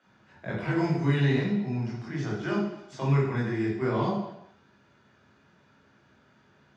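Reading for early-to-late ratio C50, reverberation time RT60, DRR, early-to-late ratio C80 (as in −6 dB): 2.5 dB, 0.80 s, −4.5 dB, 6.0 dB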